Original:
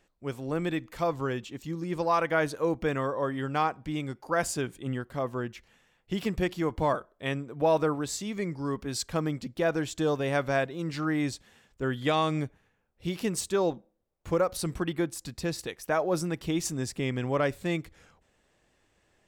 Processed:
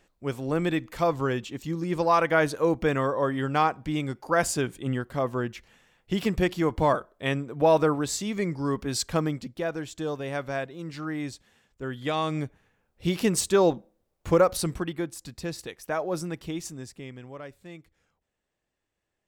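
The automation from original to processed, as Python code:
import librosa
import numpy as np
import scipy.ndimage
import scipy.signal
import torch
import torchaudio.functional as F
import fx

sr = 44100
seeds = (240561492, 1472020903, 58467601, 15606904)

y = fx.gain(x, sr, db=fx.line((9.16, 4.0), (9.71, -4.0), (11.89, -4.0), (13.09, 6.0), (14.51, 6.0), (14.93, -2.0), (16.35, -2.0), (17.38, -14.5)))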